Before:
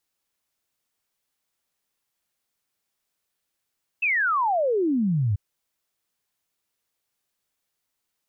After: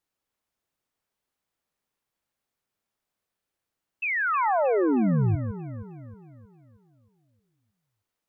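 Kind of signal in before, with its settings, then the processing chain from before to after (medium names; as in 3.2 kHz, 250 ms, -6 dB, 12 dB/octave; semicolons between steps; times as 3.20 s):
log sweep 2.7 kHz -> 94 Hz 1.34 s -19.5 dBFS
treble shelf 2.3 kHz -9 dB; echo whose repeats swap between lows and highs 157 ms, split 1.4 kHz, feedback 69%, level -7.5 dB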